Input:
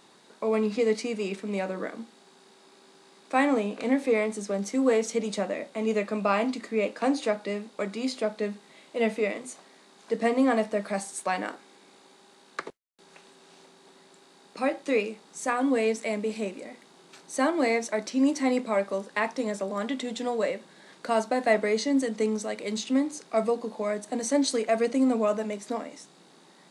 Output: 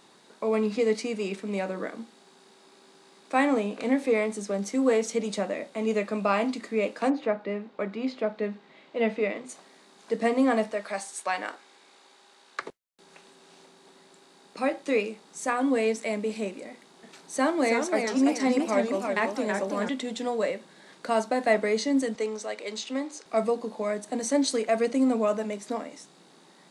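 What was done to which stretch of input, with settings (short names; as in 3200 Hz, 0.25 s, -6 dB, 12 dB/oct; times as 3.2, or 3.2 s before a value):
7.09–9.48 LPF 2000 Hz -> 4200 Hz
10.71–12.62 weighting filter A
16.7–19.89 warbling echo 0.331 s, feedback 41%, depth 178 cents, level -5 dB
22.15–23.26 BPF 400–7600 Hz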